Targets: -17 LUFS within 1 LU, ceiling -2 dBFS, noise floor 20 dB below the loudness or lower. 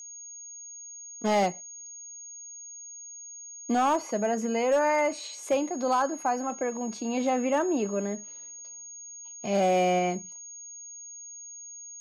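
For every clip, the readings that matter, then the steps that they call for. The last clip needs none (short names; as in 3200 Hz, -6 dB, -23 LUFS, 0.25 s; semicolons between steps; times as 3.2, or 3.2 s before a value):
clipped 0.5%; flat tops at -18.0 dBFS; steady tone 6600 Hz; tone level -41 dBFS; loudness -27.5 LUFS; peak -18.0 dBFS; loudness target -17.0 LUFS
-> clip repair -18 dBFS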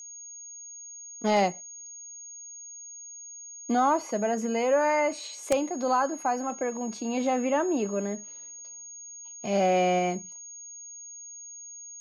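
clipped 0.0%; steady tone 6600 Hz; tone level -41 dBFS
-> notch 6600 Hz, Q 30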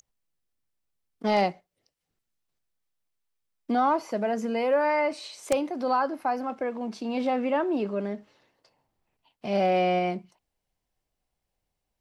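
steady tone none; loudness -27.0 LUFS; peak -9.0 dBFS; loudness target -17.0 LUFS
-> gain +10 dB; limiter -2 dBFS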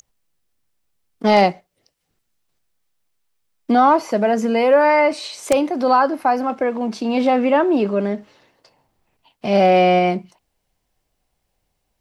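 loudness -17.0 LUFS; peak -2.0 dBFS; noise floor -73 dBFS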